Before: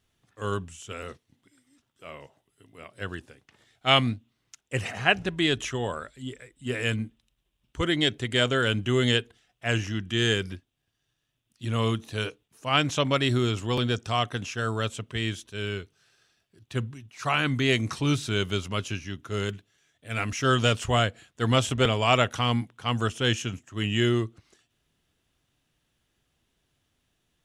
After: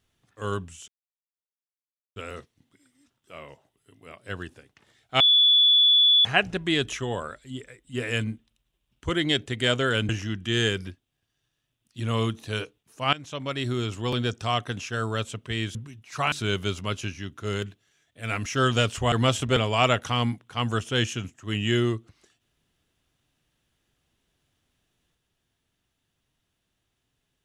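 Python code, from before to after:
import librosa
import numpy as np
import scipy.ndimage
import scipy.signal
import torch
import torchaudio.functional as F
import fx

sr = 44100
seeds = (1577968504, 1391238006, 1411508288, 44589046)

y = fx.edit(x, sr, fx.insert_silence(at_s=0.88, length_s=1.28),
    fx.bleep(start_s=3.92, length_s=1.05, hz=3440.0, db=-14.5),
    fx.cut(start_s=8.81, length_s=0.93),
    fx.fade_in_from(start_s=12.78, length_s=1.44, curve='qsin', floor_db=-18.5),
    fx.cut(start_s=15.4, length_s=1.42),
    fx.cut(start_s=17.39, length_s=0.8),
    fx.cut(start_s=20.99, length_s=0.42), tone=tone)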